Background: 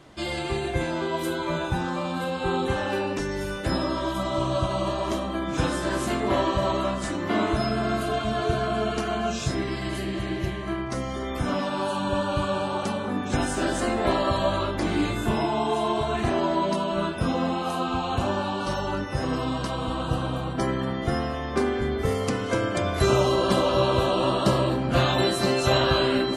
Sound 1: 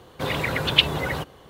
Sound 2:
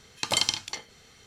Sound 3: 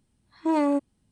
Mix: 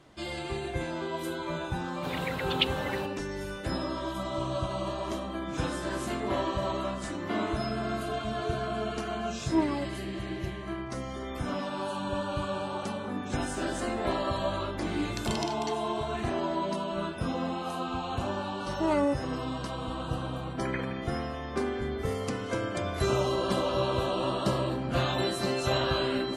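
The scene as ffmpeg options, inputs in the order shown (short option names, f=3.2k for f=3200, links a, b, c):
-filter_complex "[3:a]asplit=2[a][b];[2:a]asplit=2[c][d];[0:a]volume=-6.5dB[e];[a]aphaser=in_gain=1:out_gain=1:delay=1.7:decay=0.6:speed=1.9:type=triangular[f];[c]acompressor=threshold=-26dB:ratio=6:attack=3.2:release=140:knee=1:detection=peak[g];[b]aecho=1:1:1.5:0.36[h];[d]lowpass=f=2.2k:t=q:w=0.5098,lowpass=f=2.2k:t=q:w=0.6013,lowpass=f=2.2k:t=q:w=0.9,lowpass=f=2.2k:t=q:w=2.563,afreqshift=-2600[i];[1:a]atrim=end=1.49,asetpts=PTS-STARTPTS,volume=-10dB,afade=t=in:d=0.004:c=hsin,afade=t=out:st=1.486:d=0.004:c=hsin,adelay=1830[j];[f]atrim=end=1.11,asetpts=PTS-STARTPTS,volume=-8.5dB,afade=t=in:d=0.004:c=hsin,afade=t=out:st=1.106:d=0.004:c=hsin,adelay=399546S[k];[g]atrim=end=1.26,asetpts=PTS-STARTPTS,volume=-6.5dB,afade=t=in:d=0.004:c=hsin,afade=t=out:st=1.256:d=0.004:c=hsin,adelay=14940[l];[h]atrim=end=1.11,asetpts=PTS-STARTPTS,volume=-2dB,afade=t=in:d=0.004:c=hsin,afade=t=out:st=1.106:d=0.004:c=hsin,adelay=18350[m];[i]atrim=end=1.26,asetpts=PTS-STARTPTS,volume=-7dB,afade=t=in:d=0.004:c=hsin,afade=t=out:st=1.256:d=0.004:c=hsin,adelay=20420[n];[e][j][k][l][m][n]amix=inputs=6:normalize=0"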